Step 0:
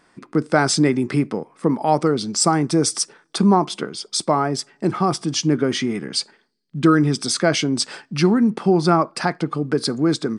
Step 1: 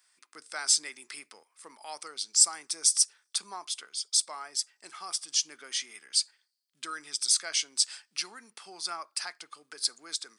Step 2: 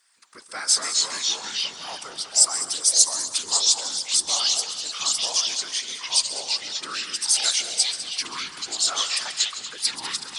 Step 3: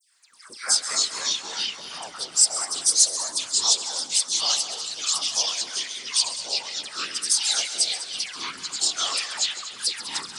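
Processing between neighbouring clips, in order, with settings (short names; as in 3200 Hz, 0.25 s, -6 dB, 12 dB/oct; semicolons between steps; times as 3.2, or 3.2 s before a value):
HPF 1100 Hz 6 dB/oct; differentiator
whisperiser; multi-head echo 67 ms, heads second and third, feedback 45%, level -13 dB; echoes that change speed 0.132 s, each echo -3 st, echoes 3; gain +4 dB
dispersion lows, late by 0.15 s, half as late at 1700 Hz; gain -1 dB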